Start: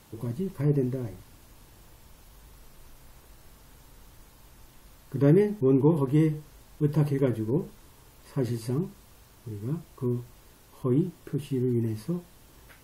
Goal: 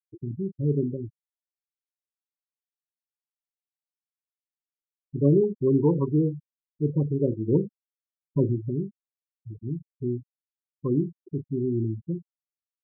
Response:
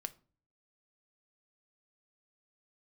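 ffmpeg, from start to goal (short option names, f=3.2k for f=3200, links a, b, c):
-filter_complex "[0:a]asettb=1/sr,asplit=3[a][b][c];[a]atrim=end=7.484[d];[b]atrim=start=7.48:end=8.69,asetpts=PTS-STARTPTS,afade=t=in:d=0.004:c=qsin,afade=t=out:st=1.206:d=0.004:c=qsin,acontrast=20[e];[c]atrim=start=8.686[f];[d][e]acrossfade=d=0.004:c1=hsin:c2=qsin[g];[g][f]acrossfade=d=0.004:c1=qsin:c2=hsin,afftfilt=real='re*between(b*sr/4096,100,1200)':imag='im*between(b*sr/4096,100,1200)':win_size=4096:overlap=0.75,asplit=2[h][i];[i]adelay=36,volume=-11dB[j];[h][j]amix=inputs=2:normalize=0,afftfilt=real='re*gte(hypot(re,im),0.0794)':imag='im*gte(hypot(re,im),0.0794)':win_size=1024:overlap=0.75"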